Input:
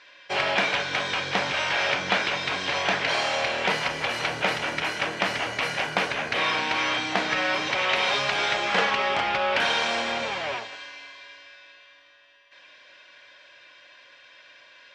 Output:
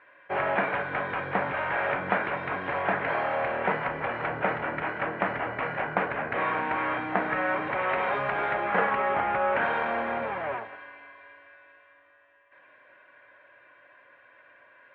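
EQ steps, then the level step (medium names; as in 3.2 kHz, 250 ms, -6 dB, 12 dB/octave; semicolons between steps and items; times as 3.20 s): low-pass 1.8 kHz 24 dB/octave; 0.0 dB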